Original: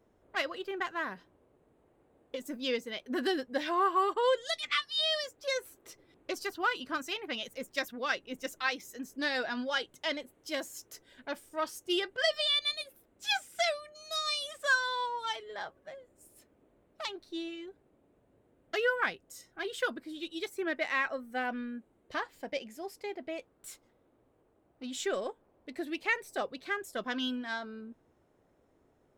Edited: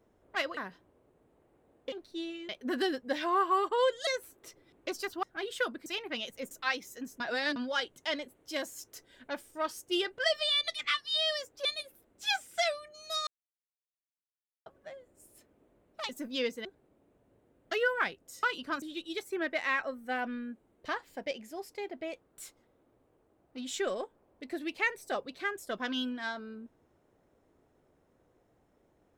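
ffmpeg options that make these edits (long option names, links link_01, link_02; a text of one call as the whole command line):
ffmpeg -i in.wav -filter_complex "[0:a]asplit=18[link_01][link_02][link_03][link_04][link_05][link_06][link_07][link_08][link_09][link_10][link_11][link_12][link_13][link_14][link_15][link_16][link_17][link_18];[link_01]atrim=end=0.572[link_19];[link_02]atrim=start=1.028:end=2.382[link_20];[link_03]atrim=start=17.098:end=17.672[link_21];[link_04]atrim=start=2.938:end=4.522[link_22];[link_05]atrim=start=5.488:end=6.652[link_23];[link_06]atrim=start=19.448:end=20.082[link_24];[link_07]atrim=start=7.038:end=7.692[link_25];[link_08]atrim=start=8.488:end=9.182[link_26];[link_09]atrim=start=9.178:end=9.542,asetpts=PTS-STARTPTS,areverse[link_27];[link_10]atrim=start=9.538:end=12.662[link_28];[link_11]atrim=start=4.518:end=5.492[link_29];[link_12]atrim=start=12.658:end=14.28,asetpts=PTS-STARTPTS,afade=type=out:start_time=1.618:duration=0.004:curve=hsin[link_30];[link_13]atrim=start=14.28:end=15.67,asetpts=PTS-STARTPTS,volume=0[link_31];[link_14]atrim=start=15.67:end=17.102,asetpts=PTS-STARTPTS,afade=type=in:duration=0.004:curve=hsin[link_32];[link_15]atrim=start=2.378:end=2.942[link_33];[link_16]atrim=start=17.668:end=19.452[link_34];[link_17]atrim=start=6.648:end=7.042[link_35];[link_18]atrim=start=20.078[link_36];[link_19][link_20]acrossfade=duration=0.004:curve1=hsin:curve2=hsin[link_37];[link_37][link_21]acrossfade=duration=0.004:curve1=hsin:curve2=hsin[link_38];[link_38][link_22]acrossfade=duration=0.004:curve1=hsin:curve2=hsin[link_39];[link_39][link_23]acrossfade=duration=0.004:curve1=hsin:curve2=hsin[link_40];[link_40][link_24]acrossfade=duration=0.004:curve1=hsin:curve2=hsin[link_41];[link_41][link_25]acrossfade=duration=0.004:curve1=hsin:curve2=hsin[link_42];[link_42][link_26]acrossfade=duration=0.004:curve1=hsin:curve2=hsin[link_43];[link_43][link_27]acrossfade=duration=0.004:curve1=hsin:curve2=hsin[link_44];[link_44][link_28]acrossfade=duration=0.004:curve1=hsin:curve2=hsin[link_45];[link_45][link_29]acrossfade=duration=0.004:curve1=hsin:curve2=hsin[link_46];[link_30][link_31][link_32]concat=n=3:v=0:a=1[link_47];[link_46][link_47]acrossfade=duration=0.004:curve1=hsin:curve2=hsin[link_48];[link_48][link_33]acrossfade=duration=0.004:curve1=hsin:curve2=hsin[link_49];[link_49][link_34]acrossfade=duration=0.004:curve1=hsin:curve2=hsin[link_50];[link_50][link_35]acrossfade=duration=0.004:curve1=hsin:curve2=hsin[link_51];[link_51][link_36]acrossfade=duration=0.004:curve1=hsin:curve2=hsin" out.wav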